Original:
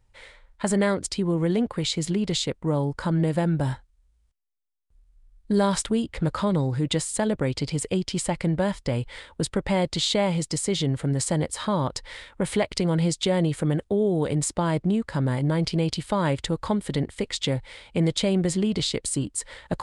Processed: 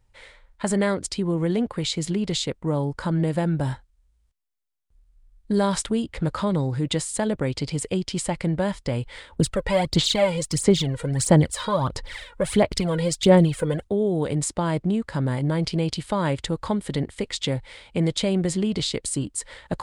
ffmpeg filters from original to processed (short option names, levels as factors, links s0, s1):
-filter_complex "[0:a]asplit=3[s0][s1][s2];[s0]afade=t=out:st=9.32:d=0.02[s3];[s1]aphaser=in_gain=1:out_gain=1:delay=2.1:decay=0.67:speed=1.5:type=sinusoidal,afade=t=in:st=9.32:d=0.02,afade=t=out:st=13.86:d=0.02[s4];[s2]afade=t=in:st=13.86:d=0.02[s5];[s3][s4][s5]amix=inputs=3:normalize=0"